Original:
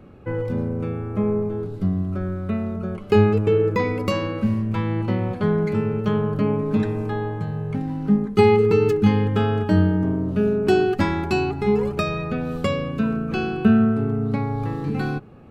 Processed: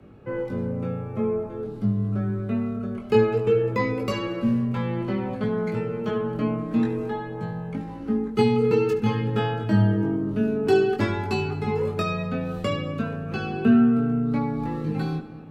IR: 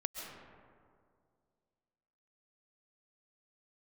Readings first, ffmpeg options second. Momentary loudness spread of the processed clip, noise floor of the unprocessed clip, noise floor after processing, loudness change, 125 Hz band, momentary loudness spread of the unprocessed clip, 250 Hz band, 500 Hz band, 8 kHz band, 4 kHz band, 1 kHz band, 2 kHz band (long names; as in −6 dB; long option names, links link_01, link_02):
10 LU, −34 dBFS, −36 dBFS, −3.0 dB, −4.0 dB, 9 LU, −2.5 dB, −3.0 dB, can't be measured, −2.0 dB, −3.5 dB, −3.0 dB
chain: -filter_complex "[0:a]afreqshift=15,flanger=delay=19:depth=2.7:speed=0.53,asplit=2[link_01][link_02];[1:a]atrim=start_sample=2205,adelay=73[link_03];[link_02][link_03]afir=irnorm=-1:irlink=0,volume=-13.5dB[link_04];[link_01][link_04]amix=inputs=2:normalize=0"